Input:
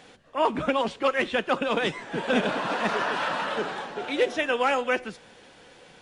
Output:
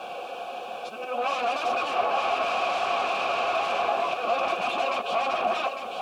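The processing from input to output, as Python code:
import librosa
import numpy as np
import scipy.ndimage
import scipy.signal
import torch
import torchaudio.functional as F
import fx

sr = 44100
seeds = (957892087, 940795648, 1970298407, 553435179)

p1 = np.flip(x).copy()
p2 = scipy.signal.sosfilt(scipy.signal.butter(2, 55.0, 'highpass', fs=sr, output='sos'), p1)
p3 = fx.peak_eq(p2, sr, hz=2000.0, db=-12.0, octaves=0.25)
p4 = fx.notch(p3, sr, hz=980.0, q=27.0)
p5 = fx.over_compress(p4, sr, threshold_db=-33.0, ratio=-1.0)
p6 = p4 + (p5 * librosa.db_to_amplitude(0.0))
p7 = fx.auto_swell(p6, sr, attack_ms=278.0)
p8 = fx.dmg_noise_colour(p7, sr, seeds[0], colour='blue', level_db=-48.0)
p9 = fx.fold_sine(p8, sr, drive_db=16, ceiling_db=-11.0)
p10 = fx.vowel_filter(p9, sr, vowel='a')
p11 = fx.notch_comb(p10, sr, f0_hz=150.0)
y = p11 + fx.echo_single(p11, sr, ms=854, db=-7.0, dry=0)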